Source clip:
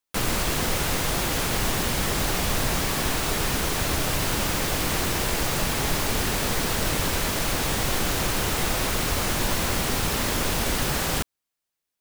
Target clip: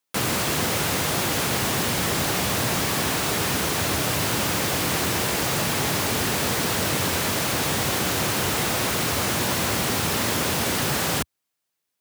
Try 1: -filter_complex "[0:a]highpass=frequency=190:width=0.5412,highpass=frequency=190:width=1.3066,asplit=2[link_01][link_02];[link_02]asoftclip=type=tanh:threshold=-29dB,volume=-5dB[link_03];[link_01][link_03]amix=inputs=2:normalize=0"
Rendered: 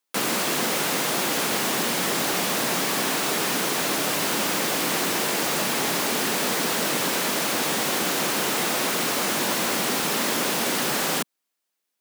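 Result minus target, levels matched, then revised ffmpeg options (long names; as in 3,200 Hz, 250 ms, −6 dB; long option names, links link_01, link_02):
125 Hz band −9.5 dB
-filter_complex "[0:a]highpass=frequency=84:width=0.5412,highpass=frequency=84:width=1.3066,asplit=2[link_01][link_02];[link_02]asoftclip=type=tanh:threshold=-29dB,volume=-5dB[link_03];[link_01][link_03]amix=inputs=2:normalize=0"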